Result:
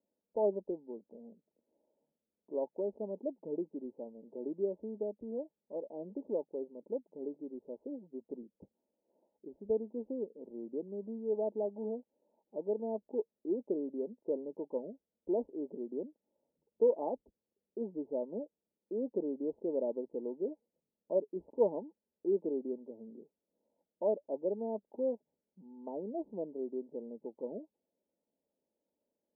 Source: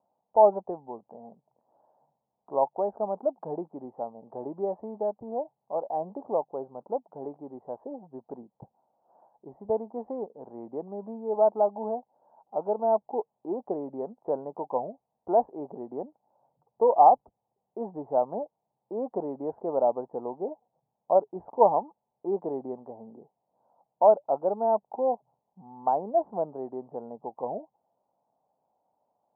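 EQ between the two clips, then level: steep low-pass 820 Hz 48 dB/octave; distance through air 490 m; static phaser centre 310 Hz, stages 4; 0.0 dB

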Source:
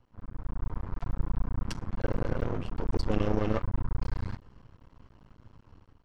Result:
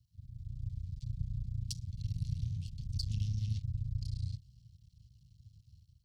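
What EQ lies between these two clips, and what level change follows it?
high-pass 65 Hz; elliptic band-stop 130–4100 Hz, stop band 50 dB; treble shelf 4.7 kHz +4 dB; +1.0 dB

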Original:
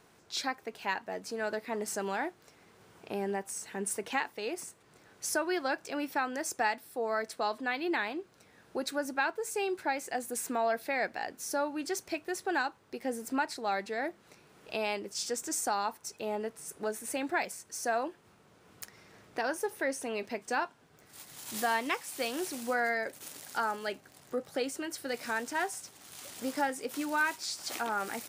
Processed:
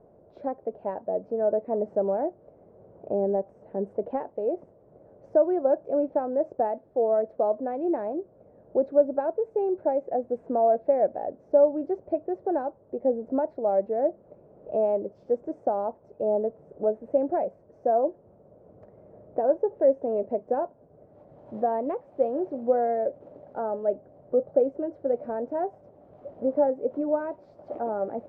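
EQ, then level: resonant low-pass 590 Hz, resonance Q 5.5; tilt EQ -2 dB/octave; 0.0 dB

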